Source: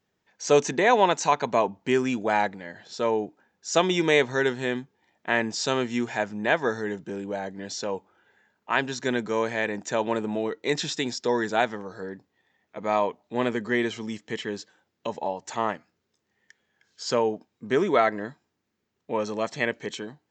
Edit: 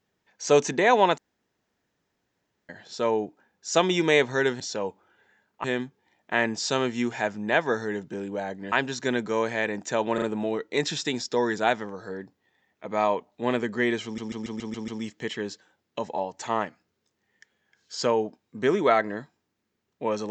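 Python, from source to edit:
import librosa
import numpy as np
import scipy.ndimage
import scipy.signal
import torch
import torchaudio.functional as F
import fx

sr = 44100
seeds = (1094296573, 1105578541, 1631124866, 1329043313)

y = fx.edit(x, sr, fx.room_tone_fill(start_s=1.18, length_s=1.51),
    fx.move(start_s=7.68, length_s=1.04, to_s=4.6),
    fx.stutter(start_s=10.14, slice_s=0.04, count=3),
    fx.stutter(start_s=13.96, slice_s=0.14, count=7), tone=tone)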